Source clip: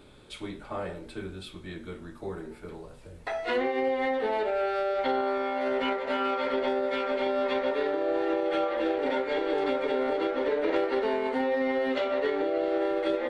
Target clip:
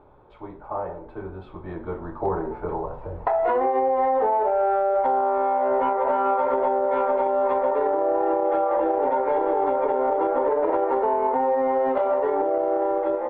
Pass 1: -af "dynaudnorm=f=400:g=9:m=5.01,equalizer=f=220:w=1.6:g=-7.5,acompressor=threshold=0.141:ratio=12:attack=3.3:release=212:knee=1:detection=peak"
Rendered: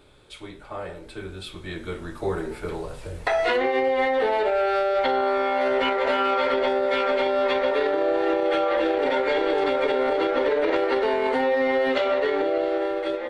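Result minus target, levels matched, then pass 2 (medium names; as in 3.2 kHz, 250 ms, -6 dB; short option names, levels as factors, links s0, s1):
1 kHz band -4.0 dB
-af "dynaudnorm=f=400:g=9:m=5.01,lowpass=f=920:t=q:w=3.3,equalizer=f=220:w=1.6:g=-7.5,acompressor=threshold=0.141:ratio=12:attack=3.3:release=212:knee=1:detection=peak"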